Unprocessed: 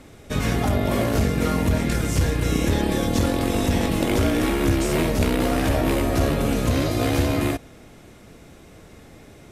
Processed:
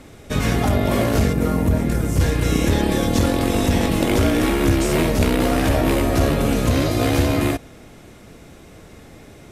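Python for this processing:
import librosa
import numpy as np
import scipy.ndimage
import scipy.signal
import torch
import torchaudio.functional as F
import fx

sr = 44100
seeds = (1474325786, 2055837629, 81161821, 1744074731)

y = fx.peak_eq(x, sr, hz=3700.0, db=-9.5, octaves=2.8, at=(1.33, 2.2))
y = y * 10.0 ** (3.0 / 20.0)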